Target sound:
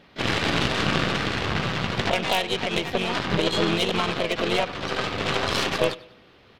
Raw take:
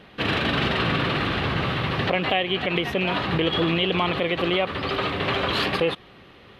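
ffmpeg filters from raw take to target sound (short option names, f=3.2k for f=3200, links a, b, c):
-filter_complex "[0:a]asplit=2[a][b];[b]asetrate=55563,aresample=44100,atempo=0.793701,volume=-3dB[c];[a][c]amix=inputs=2:normalize=0,aecho=1:1:97|194|291|388:0.168|0.0688|0.0282|0.0116,aeval=exprs='0.531*(cos(1*acos(clip(val(0)/0.531,-1,1)))-cos(1*PI/2))+0.15*(cos(4*acos(clip(val(0)/0.531,-1,1)))-cos(4*PI/2))+0.075*(cos(6*acos(clip(val(0)/0.531,-1,1)))-cos(6*PI/2))+0.0422*(cos(7*acos(clip(val(0)/0.531,-1,1)))-cos(7*PI/2))+0.0237*(cos(8*acos(clip(val(0)/0.531,-1,1)))-cos(8*PI/2))':c=same"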